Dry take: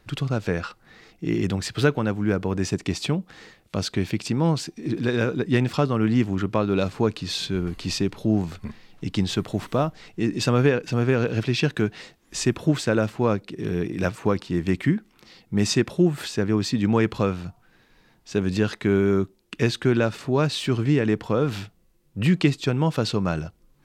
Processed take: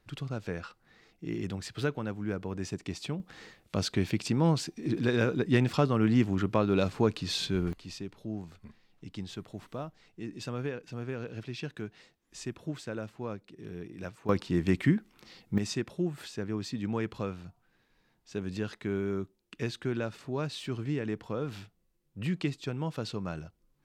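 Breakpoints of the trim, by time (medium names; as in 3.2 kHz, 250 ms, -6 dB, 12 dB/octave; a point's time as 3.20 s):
-11 dB
from 3.20 s -4 dB
from 7.73 s -16 dB
from 14.29 s -3.5 dB
from 15.58 s -12 dB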